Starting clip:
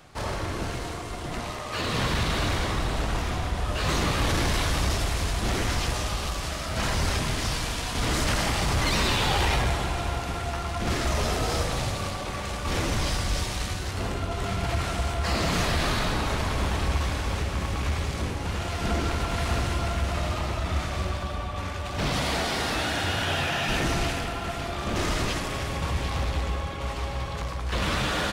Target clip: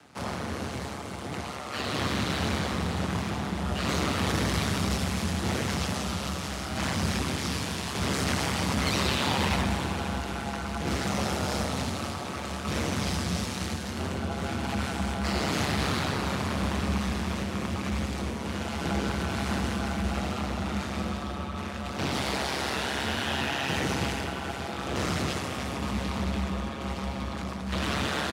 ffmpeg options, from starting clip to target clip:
ffmpeg -i in.wav -filter_complex "[0:a]aeval=exprs='val(0)*sin(2*PI*68*n/s)':channel_layout=same,asplit=6[link_01][link_02][link_03][link_04][link_05][link_06];[link_02]adelay=299,afreqshift=150,volume=-16.5dB[link_07];[link_03]adelay=598,afreqshift=300,volume=-22dB[link_08];[link_04]adelay=897,afreqshift=450,volume=-27.5dB[link_09];[link_05]adelay=1196,afreqshift=600,volume=-33dB[link_10];[link_06]adelay=1495,afreqshift=750,volume=-38.6dB[link_11];[link_01][link_07][link_08][link_09][link_10][link_11]amix=inputs=6:normalize=0,afreqshift=63" out.wav

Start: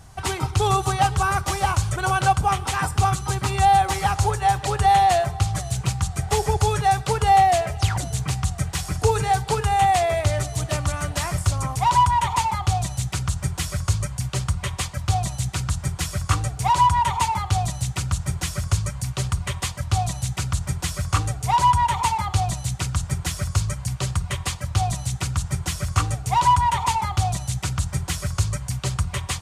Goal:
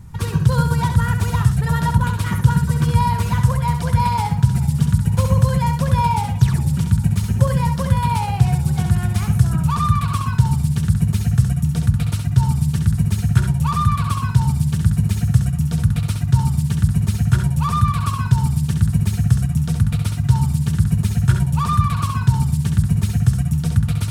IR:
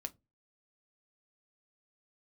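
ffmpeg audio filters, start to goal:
-filter_complex "[0:a]bass=frequency=250:gain=14,treble=frequency=4000:gain=0,asetrate=53802,aresample=44100,asplit=2[link_01][link_02];[1:a]atrim=start_sample=2205,adelay=67[link_03];[link_02][link_03]afir=irnorm=-1:irlink=0,volume=-3dB[link_04];[link_01][link_04]amix=inputs=2:normalize=0,volume=-5.5dB"

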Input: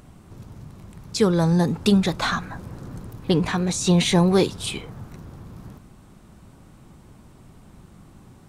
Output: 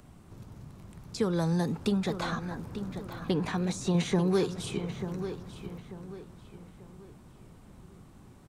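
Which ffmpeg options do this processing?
ffmpeg -i in.wav -filter_complex "[0:a]asettb=1/sr,asplit=3[link_01][link_02][link_03];[link_01]atrim=end=3.944[link_04];[link_02]atrim=start=3.94:end=5.27,asetpts=PTS-STARTPTS,afade=type=in:duration=0.004:curve=qsin,afade=type=out:start_time=1.326:duration=0.004:curve=qsin,equalizer=frequency=160:width_type=o:width=0.67:gain=7,equalizer=frequency=400:width_type=o:width=0.67:gain=8,equalizer=frequency=1600:width_type=o:width=0.67:gain=3,equalizer=frequency=6300:width_type=o:width=0.67:gain=5[link_05];[link_03]atrim=start=5.266[link_06];[link_04][link_05]acrossfade=duration=0.004:curve1=hsin:curve2=qsin[link_07];[link_07][link_06]acrossfade=duration=0.004:curve1=qsin:curve2=hsin,acrossover=split=120|780|1600[link_08][link_09][link_10][link_11];[link_08]acompressor=threshold=-41dB:ratio=4[link_12];[link_09]acompressor=threshold=-20dB:ratio=4[link_13];[link_10]acompressor=threshold=-35dB:ratio=4[link_14];[link_11]acompressor=threshold=-35dB:ratio=4[link_15];[link_12][link_13][link_14][link_15]amix=inputs=4:normalize=0,asplit=2[link_16][link_17];[link_17]adelay=890,lowpass=frequency=3700:poles=1,volume=-10dB,asplit=2[link_18][link_19];[link_19]adelay=890,lowpass=frequency=3700:poles=1,volume=0.38,asplit=2[link_20][link_21];[link_21]adelay=890,lowpass=frequency=3700:poles=1,volume=0.38,asplit=2[link_22][link_23];[link_23]adelay=890,lowpass=frequency=3700:poles=1,volume=0.38[link_24];[link_16][link_18][link_20][link_22][link_24]amix=inputs=5:normalize=0,volume=-5.5dB" out.wav

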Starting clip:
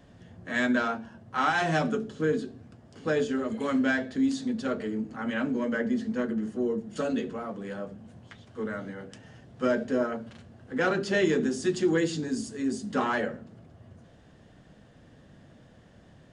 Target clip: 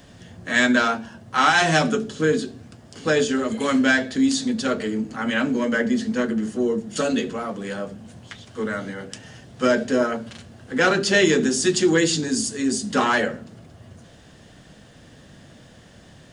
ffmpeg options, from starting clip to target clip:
ffmpeg -i in.wav -af "highshelf=frequency=2600:gain=11.5,volume=6dB" out.wav

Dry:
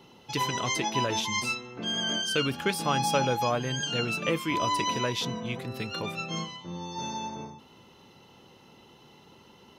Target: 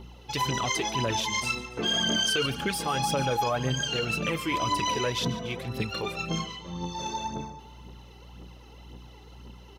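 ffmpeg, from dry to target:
ffmpeg -i in.wav -filter_complex "[0:a]asettb=1/sr,asplit=3[link_01][link_02][link_03];[link_01]atrim=end=1.774[link_04];[link_02]atrim=start=1.77:end=2.46,asetpts=PTS-STARTPTS,afade=type=in:duration=0.004:curve=qsin,afade=type=out:start_time=0.686:duration=0.004:curve=qsin,acontrast=69[link_05];[link_03]atrim=start=2.456[link_06];[link_04][link_05]acrossfade=duration=0.004:curve1=hsin:curve2=qsin[link_07];[link_07][link_06]acrossfade=duration=0.004:curve1=qsin:curve2=hsin,aeval=exprs='val(0)+0.00316*(sin(2*PI*60*n/s)+sin(2*PI*2*60*n/s)/2+sin(2*PI*3*60*n/s)/3+sin(2*PI*4*60*n/s)/4+sin(2*PI*5*60*n/s)/5)':channel_layout=same,aphaser=in_gain=1:out_gain=1:delay=2.7:decay=0.54:speed=1.9:type=triangular,alimiter=limit=-18dB:level=0:latency=1:release=34,aecho=1:1:143|286|429|572|715:0.141|0.0735|0.0382|0.0199|0.0103" out.wav

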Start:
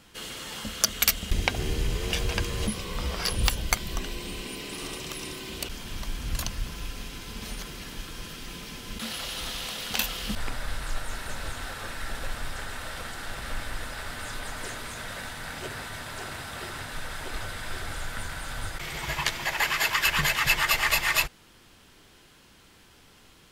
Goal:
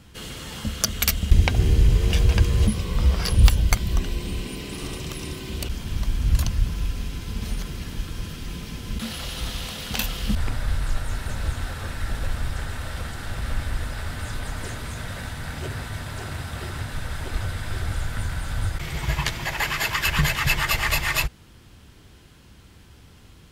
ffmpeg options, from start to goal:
ffmpeg -i in.wav -af "equalizer=frequency=73:width=0.41:gain=14.5" out.wav

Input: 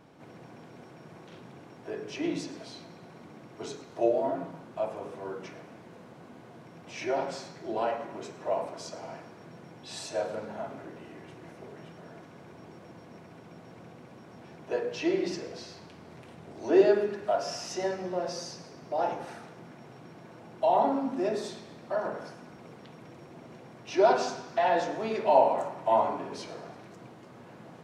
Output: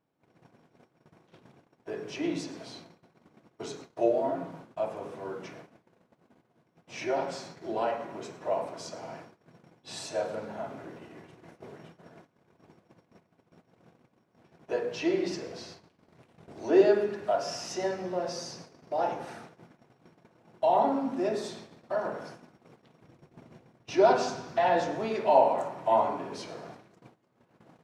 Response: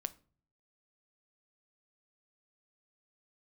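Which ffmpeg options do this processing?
-filter_complex "[0:a]agate=range=-23dB:threshold=-46dB:ratio=16:detection=peak,asettb=1/sr,asplit=3[link_01][link_02][link_03];[link_01]atrim=end=23.044[link_04];[link_02]atrim=start=23.04:end=25.05,asetpts=PTS-STARTPTS,afade=type=in:duration=0.004:curve=qsin,afade=type=out:start_time=2.006:duration=0.004:curve=qsin,lowshelf=frequency=140:gain=9.5[link_05];[link_03]atrim=start=25.046[link_06];[link_04][link_05]acrossfade=duration=0.004:curve1=hsin:curve2=qsin[link_07];[link_07][link_06]acrossfade=duration=0.004:curve1=qsin:curve2=hsin"

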